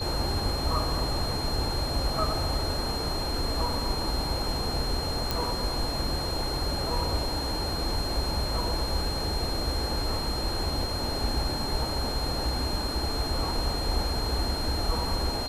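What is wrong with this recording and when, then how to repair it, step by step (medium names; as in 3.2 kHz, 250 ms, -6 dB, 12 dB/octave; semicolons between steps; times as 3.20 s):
whine 4.2 kHz -33 dBFS
5.31 s: pop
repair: de-click; band-stop 4.2 kHz, Q 30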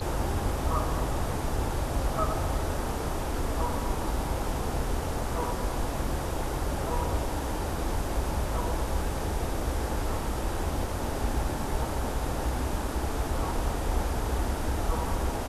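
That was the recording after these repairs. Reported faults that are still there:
nothing left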